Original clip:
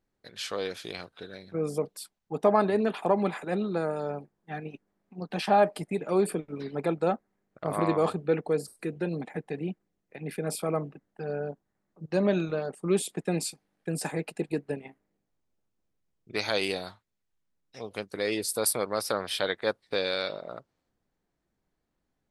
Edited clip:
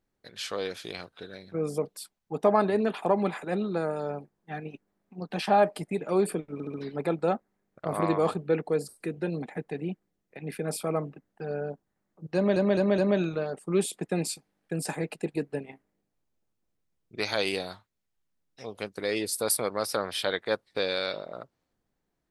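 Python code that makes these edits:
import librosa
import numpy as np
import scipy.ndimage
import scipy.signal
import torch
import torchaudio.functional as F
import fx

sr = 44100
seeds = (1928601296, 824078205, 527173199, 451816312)

y = fx.edit(x, sr, fx.stutter(start_s=6.53, slice_s=0.07, count=4),
    fx.stutter(start_s=12.14, slice_s=0.21, count=4), tone=tone)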